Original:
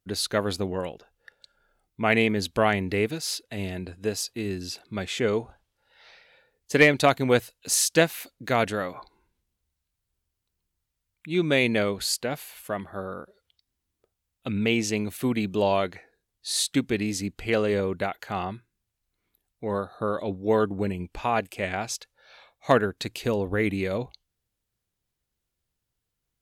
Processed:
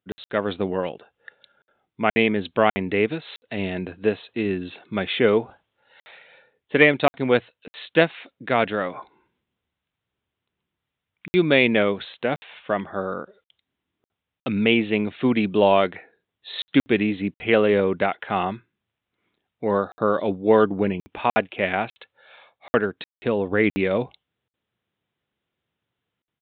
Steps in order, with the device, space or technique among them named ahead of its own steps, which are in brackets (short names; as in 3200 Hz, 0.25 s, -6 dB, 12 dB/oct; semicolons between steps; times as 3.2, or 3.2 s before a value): call with lost packets (HPF 150 Hz 12 dB/oct; downsampling 8000 Hz; AGC gain up to 7 dB; packet loss packets of 60 ms)